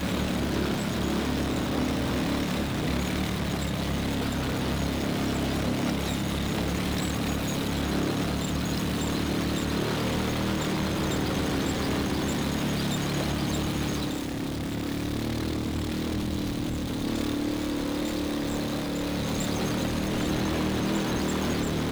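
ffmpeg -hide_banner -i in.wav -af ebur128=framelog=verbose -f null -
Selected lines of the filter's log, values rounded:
Integrated loudness:
  I:         -28.3 LUFS
  Threshold: -38.3 LUFS
Loudness range:
  LRA:         2.1 LU
  Threshold: -48.4 LUFS
  LRA low:   -29.7 LUFS
  LRA high:  -27.6 LUFS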